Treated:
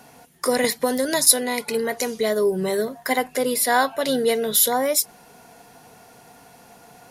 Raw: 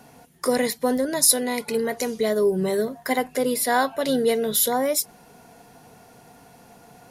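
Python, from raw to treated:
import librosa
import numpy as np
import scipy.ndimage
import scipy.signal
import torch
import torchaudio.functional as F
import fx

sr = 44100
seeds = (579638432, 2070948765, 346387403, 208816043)

y = fx.low_shelf(x, sr, hz=470.0, db=-6.0)
y = fx.band_squash(y, sr, depth_pct=100, at=(0.64, 1.27))
y = F.gain(torch.from_numpy(y), 3.5).numpy()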